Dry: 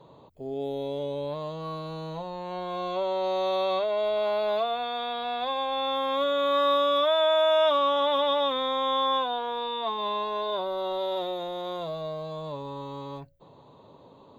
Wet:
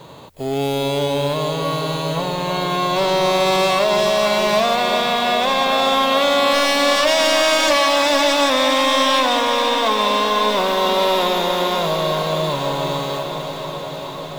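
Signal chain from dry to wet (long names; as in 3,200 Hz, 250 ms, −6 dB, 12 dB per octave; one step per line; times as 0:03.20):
spectral envelope flattened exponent 0.6
sine wavefolder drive 10 dB, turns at −12.5 dBFS
feedback delay with all-pass diffusion 454 ms, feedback 77%, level −8 dB
level −1.5 dB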